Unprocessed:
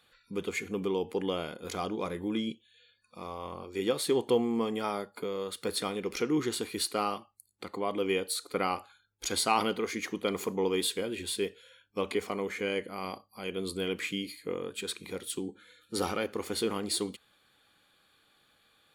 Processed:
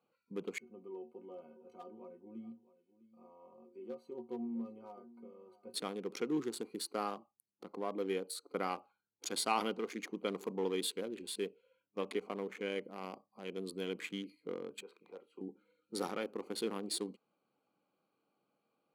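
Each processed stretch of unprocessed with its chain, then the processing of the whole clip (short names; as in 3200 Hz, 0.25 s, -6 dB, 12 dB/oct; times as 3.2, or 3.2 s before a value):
0.58–5.74 metallic resonator 110 Hz, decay 0.28 s, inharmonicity 0.03 + echo 0.654 s -18 dB
6.44–8.69 de-esser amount 50% + bell 2800 Hz -6 dB 0.66 oct
14.82–15.41 three-band isolator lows -16 dB, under 470 Hz, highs -17 dB, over 2900 Hz + doubler 30 ms -13.5 dB
whole clip: Wiener smoothing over 25 samples; HPF 160 Hz 24 dB/oct; gain -6 dB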